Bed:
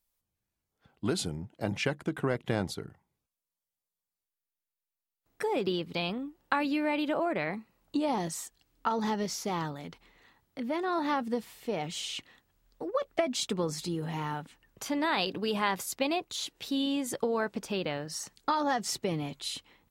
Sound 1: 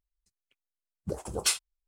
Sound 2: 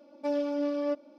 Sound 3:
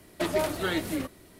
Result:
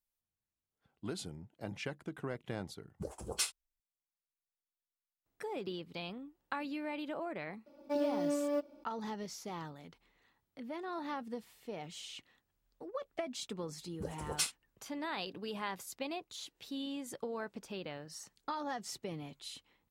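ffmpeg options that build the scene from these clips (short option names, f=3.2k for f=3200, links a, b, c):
-filter_complex "[1:a]asplit=2[a][b];[0:a]volume=-10.5dB[c];[2:a]acrusher=bits=9:mode=log:mix=0:aa=0.000001[d];[a]atrim=end=1.87,asetpts=PTS-STARTPTS,volume=-8dB,afade=t=in:d=0.004:c=hsin,afade=t=out:st=1.866:d=0.004:c=hsin,adelay=1930[e];[d]atrim=end=1.18,asetpts=PTS-STARTPTS,volume=-4dB,afade=t=in:d=0.004:c=hsin,afade=t=out:st=1.176:d=0.004:c=hsin,adelay=7660[f];[b]atrim=end=1.87,asetpts=PTS-STARTPTS,volume=-7.5dB,afade=t=in:d=0.004:c=hsin,afade=t=out:st=1.866:d=0.004:c=hsin,adelay=12930[g];[c][e][f][g]amix=inputs=4:normalize=0"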